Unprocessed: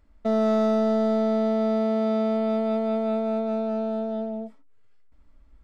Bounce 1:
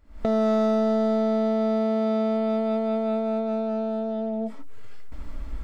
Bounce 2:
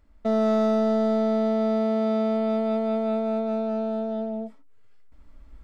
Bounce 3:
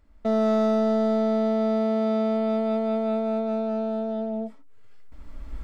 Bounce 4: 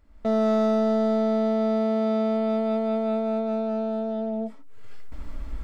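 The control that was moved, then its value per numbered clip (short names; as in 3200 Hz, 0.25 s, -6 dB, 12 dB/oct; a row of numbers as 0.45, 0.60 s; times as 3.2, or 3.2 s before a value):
recorder AGC, rising by: 90, 5.3, 14, 35 dB/s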